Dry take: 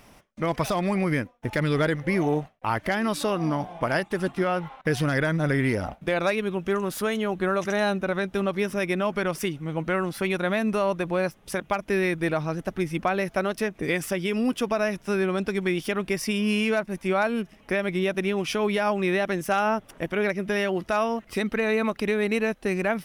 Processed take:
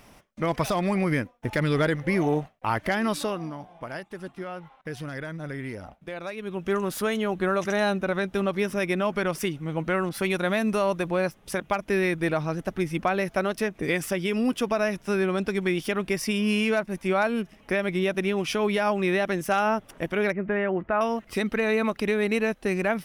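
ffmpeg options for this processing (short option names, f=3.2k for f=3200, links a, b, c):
-filter_complex "[0:a]asettb=1/sr,asplit=3[a][b][c];[a]atrim=end=10.094[d];[b]atrim=start=10.09:end=11.08,asetpts=PTS-STARTPTS,afade=t=in:d=0.004:c=qsin,afade=t=out:st=0.986:d=0.004:c=qsin,adynamicequalizer=threshold=0.00501:dfrequency=3900:dqfactor=0.7:tfrequency=3900:tqfactor=0.7:attack=5:release=100:ratio=0.375:range=2:mode=boostabove:tftype=highshelf[e];[c]atrim=start=11.076[f];[d][e]acrossfade=d=0.004:c1=hsin:c2=qsin[g];[g][f]acrossfade=d=0.004:c1=qsin:c2=hsin,asettb=1/sr,asplit=3[h][i][j];[h]atrim=end=20.324[k];[i]atrim=start=20.32:end=21.01,asetpts=PTS-STARTPTS,afade=t=in:d=0.004:c=qsin,afade=t=out:st=0.686:d=0.004:c=qsin,lowpass=f=2.1k:w=0.5412,lowpass=f=2.1k:w=1.3066[l];[j]atrim=start=21.006[m];[k][l]acrossfade=d=0.004:c1=hsin:c2=qsin[n];[n][m]acrossfade=d=0.004:c1=qsin:c2=hsin,asplit=3[o][p][q];[o]atrim=end=3.51,asetpts=PTS-STARTPTS,afade=t=out:st=3.12:d=0.39:silence=0.281838[r];[p]atrim=start=3.51:end=6.35,asetpts=PTS-STARTPTS,volume=-11dB[s];[q]atrim=start=6.35,asetpts=PTS-STARTPTS,afade=t=in:d=0.39:silence=0.281838[t];[r][s][t]concat=n=3:v=0:a=1"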